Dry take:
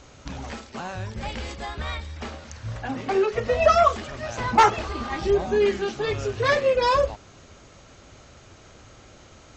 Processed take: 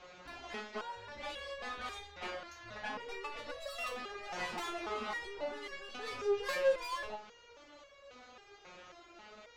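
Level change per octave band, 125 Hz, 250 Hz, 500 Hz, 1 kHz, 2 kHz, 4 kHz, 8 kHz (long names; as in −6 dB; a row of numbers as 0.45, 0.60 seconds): −28.0 dB, −18.0 dB, −15.5 dB, −18.5 dB, −11.0 dB, −10.5 dB, can't be measured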